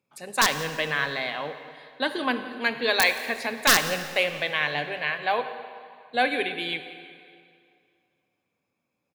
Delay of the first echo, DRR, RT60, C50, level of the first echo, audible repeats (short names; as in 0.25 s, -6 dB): 0.174 s, 9.0 dB, 2.3 s, 9.5 dB, -20.0 dB, 1